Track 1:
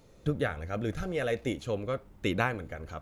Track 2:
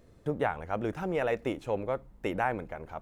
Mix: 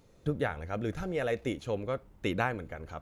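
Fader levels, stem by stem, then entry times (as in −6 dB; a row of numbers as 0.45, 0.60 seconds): −4.0, −10.5 decibels; 0.00, 0.00 seconds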